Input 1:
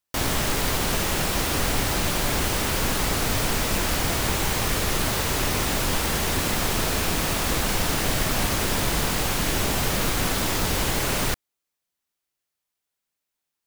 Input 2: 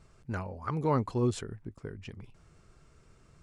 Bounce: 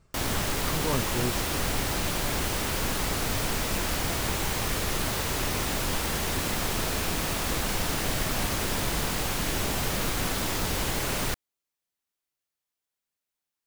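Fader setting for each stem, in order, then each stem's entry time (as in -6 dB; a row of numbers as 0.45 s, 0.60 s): -4.5 dB, -3.0 dB; 0.00 s, 0.00 s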